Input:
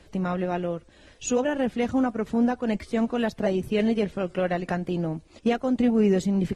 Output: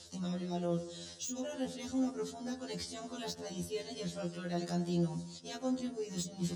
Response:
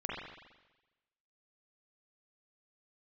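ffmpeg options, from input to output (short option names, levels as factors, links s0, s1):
-filter_complex "[0:a]areverse,acompressor=threshold=0.0316:ratio=16,areverse,lowpass=6600,asplit=2[s0][s1];[1:a]atrim=start_sample=2205,lowpass=2300[s2];[s1][s2]afir=irnorm=-1:irlink=0,volume=0.266[s3];[s0][s3]amix=inputs=2:normalize=0,aexciter=amount=8.2:drive=8.1:freq=3600,volume=15,asoftclip=hard,volume=0.0668,acrossover=split=380[s4][s5];[s5]acompressor=threshold=0.0224:ratio=6[s6];[s4][s6]amix=inputs=2:normalize=0,highpass=78,afftfilt=real='re*2*eq(mod(b,4),0)':imag='im*2*eq(mod(b,4),0)':win_size=2048:overlap=0.75,volume=0.708"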